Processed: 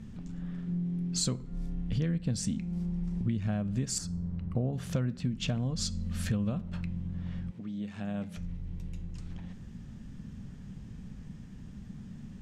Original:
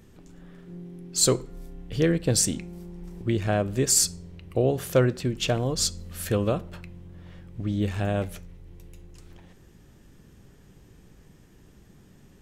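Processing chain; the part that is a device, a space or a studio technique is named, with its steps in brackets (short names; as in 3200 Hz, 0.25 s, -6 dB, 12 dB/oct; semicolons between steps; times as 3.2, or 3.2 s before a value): jukebox (LPF 7000 Hz 12 dB/oct; resonant low shelf 280 Hz +7 dB, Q 3; compressor 5:1, threshold -29 dBFS, peak gain reduction 16.5 dB); 3.98–4.73 resonant high shelf 1800 Hz -9 dB, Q 1.5; 7.5–8.36 HPF 350 Hz -> 150 Hz 12 dB/oct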